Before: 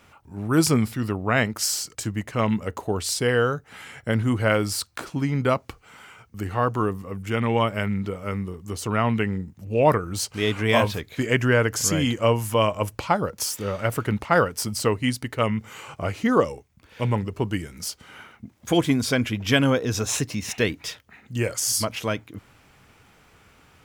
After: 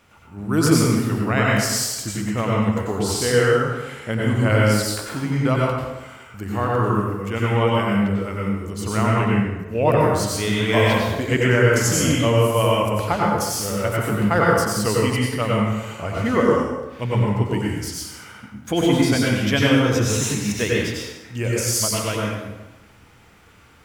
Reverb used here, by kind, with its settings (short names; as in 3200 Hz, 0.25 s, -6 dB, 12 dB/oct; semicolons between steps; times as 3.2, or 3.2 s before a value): plate-style reverb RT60 1.1 s, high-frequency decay 0.75×, pre-delay 80 ms, DRR -4 dB; gain -2 dB